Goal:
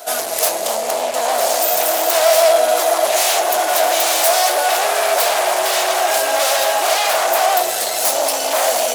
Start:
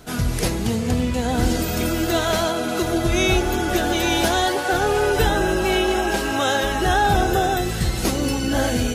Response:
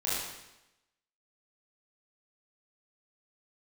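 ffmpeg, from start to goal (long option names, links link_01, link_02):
-af "aeval=exprs='0.473*sin(PI/2*5.01*val(0)/0.473)':channel_layout=same,highpass=frequency=650:width_type=q:width=6.9,crystalizer=i=2.5:c=0,volume=-13.5dB"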